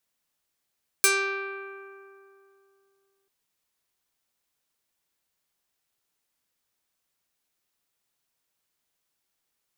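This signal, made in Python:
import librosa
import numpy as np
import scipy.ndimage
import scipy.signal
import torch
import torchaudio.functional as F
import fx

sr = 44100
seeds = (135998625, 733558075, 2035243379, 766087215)

y = fx.pluck(sr, length_s=2.24, note=67, decay_s=2.77, pick=0.41, brightness='medium')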